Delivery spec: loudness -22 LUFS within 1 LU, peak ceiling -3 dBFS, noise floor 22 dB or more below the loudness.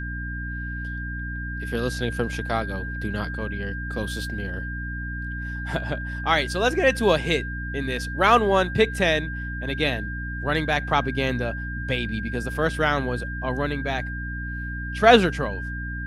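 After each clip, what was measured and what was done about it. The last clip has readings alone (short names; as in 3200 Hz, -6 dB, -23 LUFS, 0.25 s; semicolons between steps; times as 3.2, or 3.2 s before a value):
hum 60 Hz; harmonics up to 300 Hz; hum level -30 dBFS; steady tone 1600 Hz; tone level -33 dBFS; loudness -24.5 LUFS; peak -2.0 dBFS; loudness target -22.0 LUFS
-> de-hum 60 Hz, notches 5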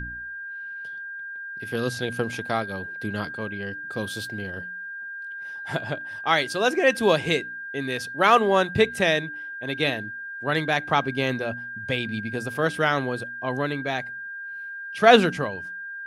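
hum none; steady tone 1600 Hz; tone level -33 dBFS
-> notch 1600 Hz, Q 30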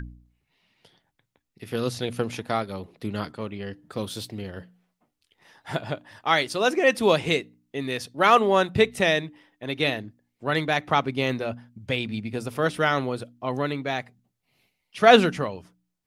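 steady tone none; loudness -24.5 LUFS; peak -2.5 dBFS; loudness target -22.0 LUFS
-> gain +2.5 dB; limiter -3 dBFS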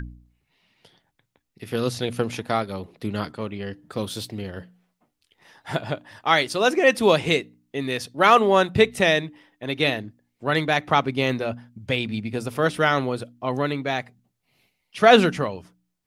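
loudness -22.5 LUFS; peak -3.0 dBFS; noise floor -76 dBFS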